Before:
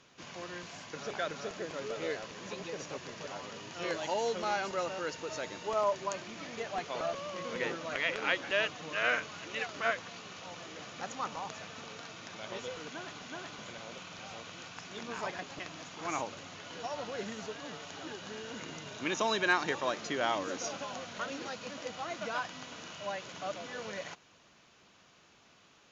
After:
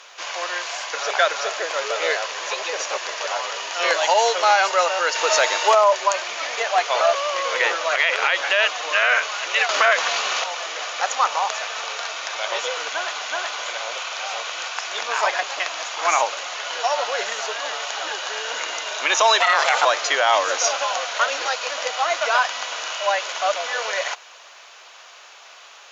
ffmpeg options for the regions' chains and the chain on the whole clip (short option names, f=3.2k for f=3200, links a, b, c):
-filter_complex "[0:a]asettb=1/sr,asplit=3[a][b][c];[a]atrim=end=5.154[d];[b]atrim=start=5.15:end=5.75,asetpts=PTS-STARTPTS,afade=t=in:d=0.004:c=qsin,afade=t=out:st=0.596:d=0.004:c=qsin,acontrast=39,asoftclip=type=hard:threshold=-21dB[e];[c]atrim=start=5.746[f];[d][e]acrossfade=d=0.004:c1=hsin:c2=qsin[g];[g][f]acrossfade=d=0.004:c1=qsin:c2=hsin,asettb=1/sr,asplit=3[h][i][j];[h]atrim=end=9.694[k];[i]atrim=start=9.69:end=10.44,asetpts=PTS-STARTPTS,afade=t=in:d=0.004:c=qsin,afade=t=out:st=0.746:d=0.004:c=qsin,equalizer=f=210:t=o:w=0.77:g=9,acontrast=59[l];[j]atrim=start=10.436[m];[k][l]acrossfade=d=0.004:c1=hsin:c2=qsin[n];[n][m]acrossfade=d=0.004:c1=qsin:c2=hsin,asettb=1/sr,asplit=3[o][p][q];[o]atrim=end=19.404[r];[p]atrim=start=19.4:end=19.85,asetpts=PTS-STARTPTS,afade=t=in:d=0.004:c=qsin,afade=t=out:st=0.446:d=0.004:c=qsin,aeval=exprs='val(0)*sin(2*PI*340*n/s)':c=same,acontrast=69[s];[q]atrim=start=19.846[t];[r][s]acrossfade=d=0.004:c1=hsin:c2=qsin[u];[u][t]acrossfade=d=0.004:c1=qsin:c2=hsin,highpass=f=590:w=0.5412,highpass=f=590:w=1.3066,alimiter=level_in=24dB:limit=-1dB:release=50:level=0:latency=1,volume=-5.5dB"